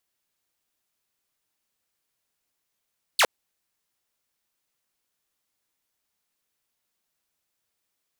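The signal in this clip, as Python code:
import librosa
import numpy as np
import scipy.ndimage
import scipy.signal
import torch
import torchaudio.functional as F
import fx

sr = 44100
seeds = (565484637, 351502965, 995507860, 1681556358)

y = fx.laser_zap(sr, level_db=-13.0, start_hz=4900.0, end_hz=400.0, length_s=0.06, wave='saw')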